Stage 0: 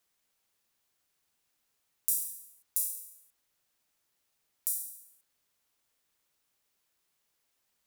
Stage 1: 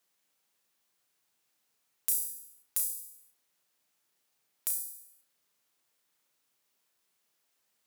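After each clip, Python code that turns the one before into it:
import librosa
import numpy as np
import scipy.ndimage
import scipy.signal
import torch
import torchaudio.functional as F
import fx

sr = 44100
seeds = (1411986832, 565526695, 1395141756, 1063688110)

y = scipy.signal.sosfilt(scipy.signal.butter(2, 130.0, 'highpass', fs=sr, output='sos'), x)
y = np.clip(10.0 ** (14.0 / 20.0) * y, -1.0, 1.0) / 10.0 ** (14.0 / 20.0)
y = fx.room_flutter(y, sr, wall_m=5.8, rt60_s=0.28)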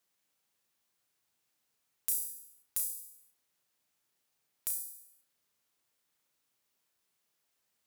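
y = fx.low_shelf(x, sr, hz=100.0, db=10.0)
y = y * librosa.db_to_amplitude(-3.0)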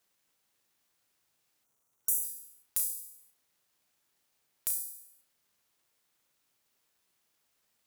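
y = fx.spec_box(x, sr, start_s=1.64, length_s=0.6, low_hz=1500.0, high_hz=5600.0, gain_db=-21)
y = fx.dmg_crackle(y, sr, seeds[0], per_s=410.0, level_db=-72.0)
y = y * librosa.db_to_amplitude(3.0)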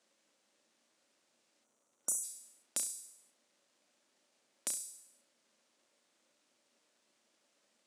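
y = fx.cabinet(x, sr, low_hz=210.0, low_slope=12, high_hz=8800.0, hz=(230.0, 320.0, 570.0), db=(10, 6, 10))
y = y * librosa.db_to_amplitude(3.0)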